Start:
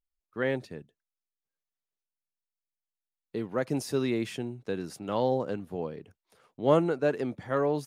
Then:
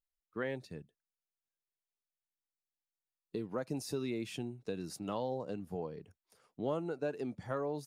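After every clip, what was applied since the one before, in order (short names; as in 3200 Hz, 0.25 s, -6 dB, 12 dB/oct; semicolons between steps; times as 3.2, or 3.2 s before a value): spectral noise reduction 7 dB; compressor 3:1, threshold -36 dBFS, peak gain reduction 14.5 dB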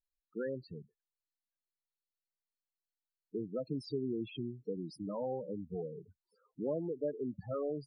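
bell 4200 Hz +6 dB 0.3 oct; loudest bins only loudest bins 8; gain +1 dB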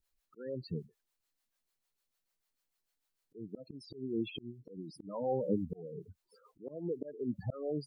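auto swell 0.539 s; harmonic tremolo 6.7 Hz, crossover 410 Hz; gain +13 dB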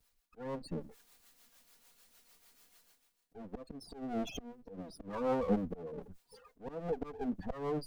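minimum comb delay 4.2 ms; reverse; upward compressor, threshold -48 dBFS; reverse; gain +2 dB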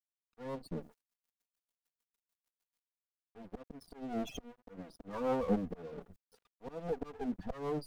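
crossover distortion -55 dBFS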